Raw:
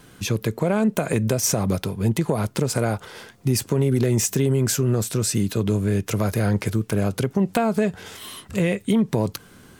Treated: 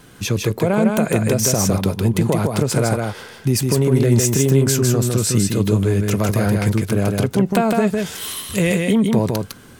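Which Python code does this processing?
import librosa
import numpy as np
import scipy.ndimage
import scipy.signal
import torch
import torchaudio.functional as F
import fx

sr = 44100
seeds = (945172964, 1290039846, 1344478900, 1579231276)

y = fx.high_shelf(x, sr, hz=3700.0, db=9.0, at=(7.87, 8.79))
y = y + 10.0 ** (-3.5 / 20.0) * np.pad(y, (int(156 * sr / 1000.0), 0))[:len(y)]
y = y * librosa.db_to_amplitude(3.0)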